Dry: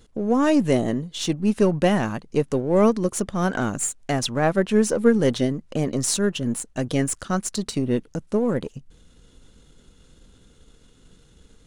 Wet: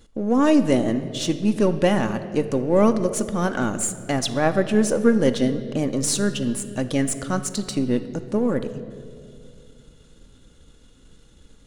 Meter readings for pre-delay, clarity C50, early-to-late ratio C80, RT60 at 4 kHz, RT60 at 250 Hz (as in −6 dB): 3 ms, 12.0 dB, 13.0 dB, 1.5 s, 3.0 s